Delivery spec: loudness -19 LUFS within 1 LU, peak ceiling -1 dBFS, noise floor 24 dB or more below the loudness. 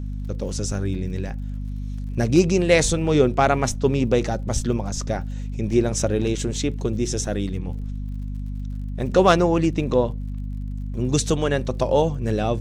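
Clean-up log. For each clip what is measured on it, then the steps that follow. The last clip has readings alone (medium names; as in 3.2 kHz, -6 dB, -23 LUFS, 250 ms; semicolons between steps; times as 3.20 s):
tick rate 48 per s; hum 50 Hz; highest harmonic 250 Hz; hum level -26 dBFS; loudness -23.0 LUFS; peak level -3.0 dBFS; loudness target -19.0 LUFS
-> de-click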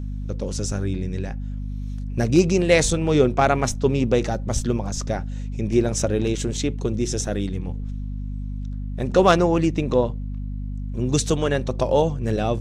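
tick rate 0.079 per s; hum 50 Hz; highest harmonic 250 Hz; hum level -26 dBFS
-> hum notches 50/100/150/200/250 Hz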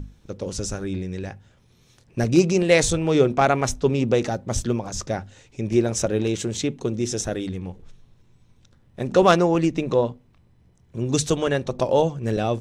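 hum not found; loudness -22.5 LUFS; peak level -3.5 dBFS; loudness target -19.0 LUFS
-> trim +3.5 dB; peak limiter -1 dBFS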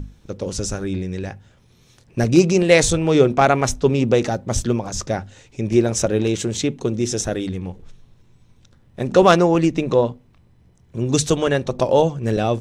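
loudness -19.0 LUFS; peak level -1.0 dBFS; noise floor -54 dBFS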